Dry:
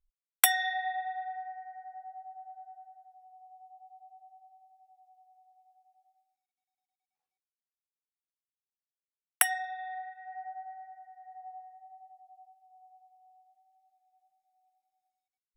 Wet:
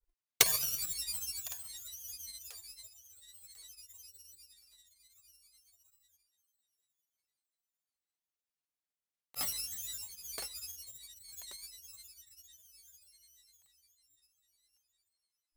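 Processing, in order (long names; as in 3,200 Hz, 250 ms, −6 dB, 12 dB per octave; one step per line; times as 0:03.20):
samples in bit-reversed order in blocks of 128 samples
feedback echo with a high-pass in the loop 1,052 ms, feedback 28%, high-pass 420 Hz, level −18 dB
granular cloud, pitch spread up and down by 7 semitones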